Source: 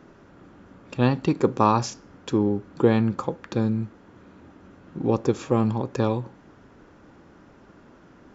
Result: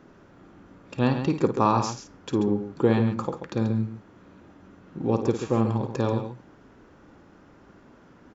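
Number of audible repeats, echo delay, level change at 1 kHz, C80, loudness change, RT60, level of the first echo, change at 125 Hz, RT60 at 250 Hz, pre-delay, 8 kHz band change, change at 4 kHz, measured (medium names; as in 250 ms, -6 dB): 2, 53 ms, -1.5 dB, no reverb, -1.5 dB, no reverb, -9.0 dB, -1.0 dB, no reverb, no reverb, no reading, -1.5 dB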